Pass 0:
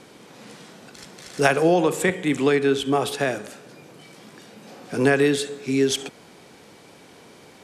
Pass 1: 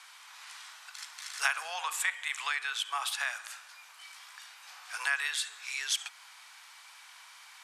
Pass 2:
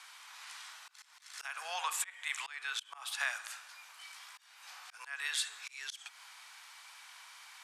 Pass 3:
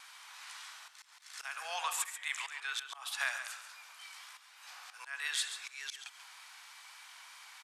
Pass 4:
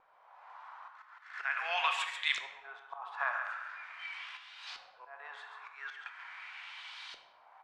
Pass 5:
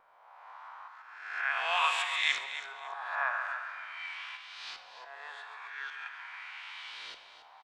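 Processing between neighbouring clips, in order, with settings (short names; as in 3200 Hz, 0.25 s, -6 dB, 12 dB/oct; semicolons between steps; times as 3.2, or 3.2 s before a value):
steep high-pass 970 Hz 36 dB/oct; compressor 1.5:1, threshold -35 dBFS, peak gain reduction 7 dB
auto swell 0.3 s; gain -1 dB
vibrato 3.3 Hz 30 cents; echo 0.138 s -10 dB
LFO low-pass saw up 0.42 Hz 500–4200 Hz; on a send at -6.5 dB: reverb RT60 0.95 s, pre-delay 3 ms; on the sum: gain +2.5 dB
spectral swells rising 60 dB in 0.92 s; feedback echo 0.279 s, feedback 27%, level -11.5 dB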